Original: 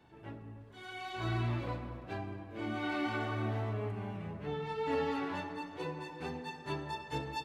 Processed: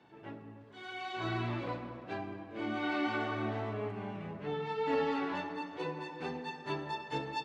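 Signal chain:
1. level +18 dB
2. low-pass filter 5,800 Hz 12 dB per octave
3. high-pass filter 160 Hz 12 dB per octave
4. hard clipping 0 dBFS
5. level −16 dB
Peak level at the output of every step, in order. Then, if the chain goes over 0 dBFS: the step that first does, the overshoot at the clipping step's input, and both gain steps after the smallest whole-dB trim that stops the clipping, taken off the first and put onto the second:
−4.5, −4.5, −5.5, −5.5, −21.5 dBFS
no step passes full scale

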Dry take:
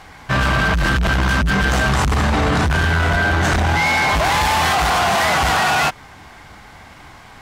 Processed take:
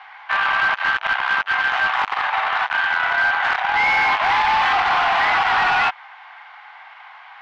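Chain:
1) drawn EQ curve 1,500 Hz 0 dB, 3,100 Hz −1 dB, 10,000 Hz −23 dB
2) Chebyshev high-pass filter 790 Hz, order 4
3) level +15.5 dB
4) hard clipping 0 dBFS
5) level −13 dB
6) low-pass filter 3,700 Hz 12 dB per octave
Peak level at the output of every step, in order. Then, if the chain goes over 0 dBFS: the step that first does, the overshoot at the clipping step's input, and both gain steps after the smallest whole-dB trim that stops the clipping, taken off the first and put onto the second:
−4.0, −7.0, +8.5, 0.0, −13.0, −12.5 dBFS
step 3, 8.5 dB
step 3 +6.5 dB, step 5 −4 dB

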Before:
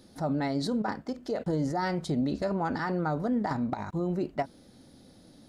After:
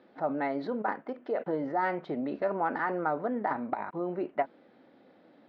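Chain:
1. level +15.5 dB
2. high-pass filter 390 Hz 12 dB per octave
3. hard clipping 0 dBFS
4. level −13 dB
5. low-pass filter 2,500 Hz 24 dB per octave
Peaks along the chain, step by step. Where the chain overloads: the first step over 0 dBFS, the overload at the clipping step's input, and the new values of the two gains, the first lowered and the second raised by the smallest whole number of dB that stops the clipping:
−4.5, −2.0, −2.0, −15.0, −15.5 dBFS
no step passes full scale

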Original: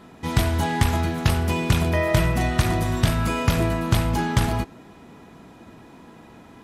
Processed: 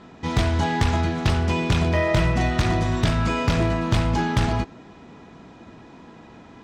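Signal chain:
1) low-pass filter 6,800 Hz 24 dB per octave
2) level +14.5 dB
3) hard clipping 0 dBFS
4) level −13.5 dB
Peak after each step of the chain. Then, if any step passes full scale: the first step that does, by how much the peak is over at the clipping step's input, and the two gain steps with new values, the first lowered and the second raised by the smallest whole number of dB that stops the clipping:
−7.5, +7.0, 0.0, −13.5 dBFS
step 2, 7.0 dB
step 2 +7.5 dB, step 4 −6.5 dB

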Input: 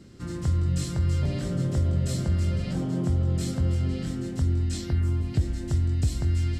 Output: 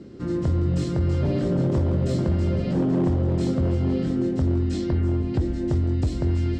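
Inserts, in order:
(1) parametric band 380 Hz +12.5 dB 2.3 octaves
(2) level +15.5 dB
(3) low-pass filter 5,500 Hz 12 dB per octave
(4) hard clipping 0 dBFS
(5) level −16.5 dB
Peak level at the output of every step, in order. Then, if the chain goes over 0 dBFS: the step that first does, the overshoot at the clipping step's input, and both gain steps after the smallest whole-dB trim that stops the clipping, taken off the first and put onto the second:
−7.0, +8.5, +8.5, 0.0, −16.5 dBFS
step 2, 8.5 dB
step 2 +6.5 dB, step 5 −7.5 dB

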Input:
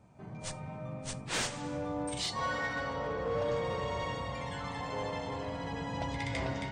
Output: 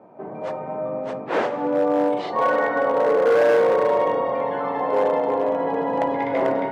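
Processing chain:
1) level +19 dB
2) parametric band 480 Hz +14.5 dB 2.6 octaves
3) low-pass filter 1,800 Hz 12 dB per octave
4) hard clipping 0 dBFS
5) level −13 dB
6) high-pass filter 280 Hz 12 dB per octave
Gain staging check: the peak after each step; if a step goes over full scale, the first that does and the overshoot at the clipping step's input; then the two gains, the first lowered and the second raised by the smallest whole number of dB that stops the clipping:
−7.0, +8.0, +8.0, 0.0, −13.0, −8.0 dBFS
step 2, 8.0 dB
step 1 +11 dB, step 5 −5 dB

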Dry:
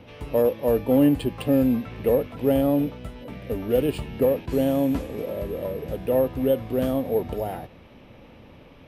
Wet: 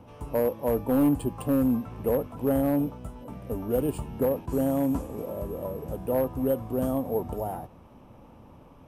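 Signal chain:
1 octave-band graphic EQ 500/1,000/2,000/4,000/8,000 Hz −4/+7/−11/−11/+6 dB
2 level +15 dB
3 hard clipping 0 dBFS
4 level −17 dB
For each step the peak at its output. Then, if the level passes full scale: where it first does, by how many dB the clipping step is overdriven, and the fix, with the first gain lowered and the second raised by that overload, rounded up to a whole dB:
−9.5, +5.5, 0.0, −17.0 dBFS
step 2, 5.5 dB
step 2 +9 dB, step 4 −11 dB

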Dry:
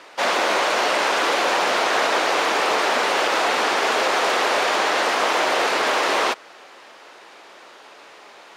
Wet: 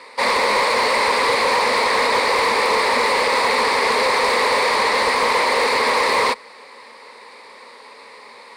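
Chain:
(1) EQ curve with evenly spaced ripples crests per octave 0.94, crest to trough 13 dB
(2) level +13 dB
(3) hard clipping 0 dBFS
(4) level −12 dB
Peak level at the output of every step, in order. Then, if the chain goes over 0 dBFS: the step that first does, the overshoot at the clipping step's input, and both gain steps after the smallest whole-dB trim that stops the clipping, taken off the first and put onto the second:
−5.0, +8.0, 0.0, −12.0 dBFS
step 2, 8.0 dB
step 2 +5 dB, step 4 −4 dB

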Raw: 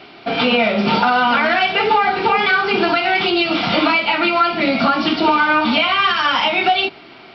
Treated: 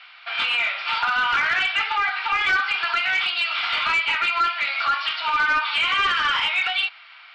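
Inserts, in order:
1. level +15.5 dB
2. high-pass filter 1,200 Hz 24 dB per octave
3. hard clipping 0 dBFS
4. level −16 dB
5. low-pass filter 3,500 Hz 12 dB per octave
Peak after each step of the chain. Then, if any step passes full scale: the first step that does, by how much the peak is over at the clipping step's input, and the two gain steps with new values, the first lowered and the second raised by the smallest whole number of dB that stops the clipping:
+10.5, +9.0, 0.0, −16.0, −15.5 dBFS
step 1, 9.0 dB
step 1 +6.5 dB, step 4 −7 dB

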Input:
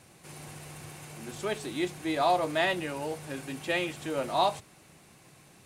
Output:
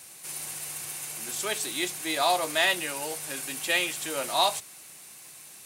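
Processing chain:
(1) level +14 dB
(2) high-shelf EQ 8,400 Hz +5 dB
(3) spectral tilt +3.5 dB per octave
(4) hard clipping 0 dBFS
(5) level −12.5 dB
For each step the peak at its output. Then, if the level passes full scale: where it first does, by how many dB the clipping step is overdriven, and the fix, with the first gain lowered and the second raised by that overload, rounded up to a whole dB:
+2.0, +2.0, +3.5, 0.0, −12.5 dBFS
step 1, 3.5 dB
step 1 +10 dB, step 5 −8.5 dB

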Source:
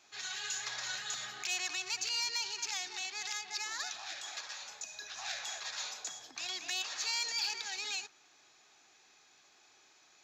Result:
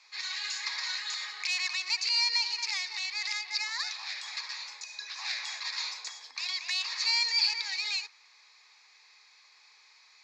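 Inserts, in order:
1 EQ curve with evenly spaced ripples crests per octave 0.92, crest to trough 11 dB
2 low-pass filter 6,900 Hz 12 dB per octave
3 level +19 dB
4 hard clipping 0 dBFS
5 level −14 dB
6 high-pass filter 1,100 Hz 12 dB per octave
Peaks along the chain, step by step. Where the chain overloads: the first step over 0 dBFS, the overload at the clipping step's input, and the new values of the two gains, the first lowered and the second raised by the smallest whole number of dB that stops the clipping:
−20.5, −21.0, −2.0, −2.0, −16.0, −16.0 dBFS
no step passes full scale

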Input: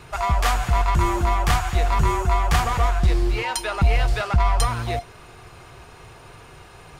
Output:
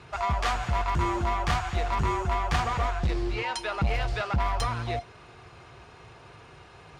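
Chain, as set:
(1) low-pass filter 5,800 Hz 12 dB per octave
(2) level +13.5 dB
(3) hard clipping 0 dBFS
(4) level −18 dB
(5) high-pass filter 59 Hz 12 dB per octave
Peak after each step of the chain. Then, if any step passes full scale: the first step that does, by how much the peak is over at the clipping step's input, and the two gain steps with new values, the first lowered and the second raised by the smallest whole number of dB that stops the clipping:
−9.0, +4.5, 0.0, −18.0, −13.5 dBFS
step 2, 4.5 dB
step 2 +8.5 dB, step 4 −13 dB

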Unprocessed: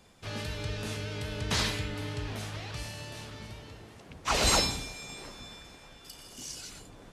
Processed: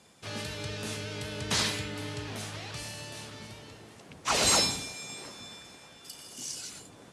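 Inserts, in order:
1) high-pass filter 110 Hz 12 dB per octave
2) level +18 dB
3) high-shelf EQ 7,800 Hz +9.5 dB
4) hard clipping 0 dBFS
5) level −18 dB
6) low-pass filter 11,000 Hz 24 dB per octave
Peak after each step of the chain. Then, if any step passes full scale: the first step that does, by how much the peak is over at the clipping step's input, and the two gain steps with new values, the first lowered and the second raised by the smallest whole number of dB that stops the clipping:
−12.0, +6.0, +8.5, 0.0, −18.0, −15.5 dBFS
step 2, 8.5 dB
step 2 +9 dB, step 5 −9 dB

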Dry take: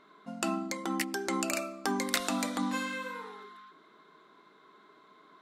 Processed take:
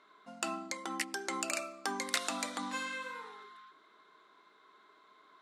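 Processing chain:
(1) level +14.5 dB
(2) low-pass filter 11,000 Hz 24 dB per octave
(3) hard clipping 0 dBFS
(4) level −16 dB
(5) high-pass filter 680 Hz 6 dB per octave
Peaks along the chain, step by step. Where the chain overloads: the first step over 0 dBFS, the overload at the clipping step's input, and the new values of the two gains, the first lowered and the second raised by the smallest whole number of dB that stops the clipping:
+7.0, +5.0, 0.0, −16.0, −14.5 dBFS
step 1, 5.0 dB
step 1 +9.5 dB, step 4 −11 dB

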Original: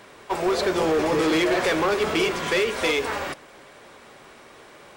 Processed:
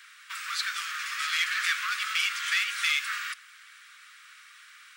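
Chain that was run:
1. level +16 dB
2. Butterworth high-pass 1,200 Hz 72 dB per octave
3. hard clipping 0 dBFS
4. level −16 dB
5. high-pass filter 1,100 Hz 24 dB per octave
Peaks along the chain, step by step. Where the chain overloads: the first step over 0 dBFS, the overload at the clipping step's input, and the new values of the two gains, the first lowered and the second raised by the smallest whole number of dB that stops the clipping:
+0.5, +3.0, 0.0, −16.0, −14.0 dBFS
step 1, 3.0 dB
step 1 +13 dB, step 4 −13 dB

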